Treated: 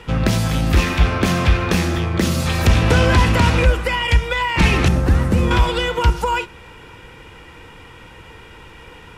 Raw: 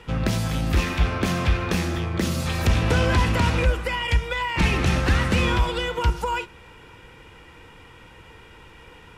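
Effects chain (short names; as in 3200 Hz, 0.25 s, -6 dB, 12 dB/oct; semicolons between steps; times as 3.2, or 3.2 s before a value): 4.88–5.51 bell 3100 Hz -14 dB 2.9 oct; gain +6 dB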